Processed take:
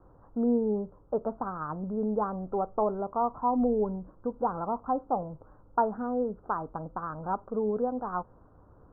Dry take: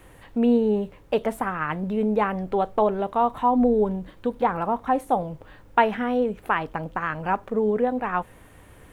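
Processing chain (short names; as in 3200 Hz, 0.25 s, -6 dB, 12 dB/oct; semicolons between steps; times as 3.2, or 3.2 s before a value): steep low-pass 1400 Hz 72 dB/oct; gain -6.5 dB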